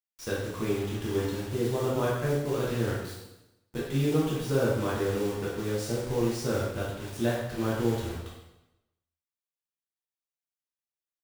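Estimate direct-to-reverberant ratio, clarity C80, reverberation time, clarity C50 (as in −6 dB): −7.0 dB, 4.0 dB, 0.95 s, 0.5 dB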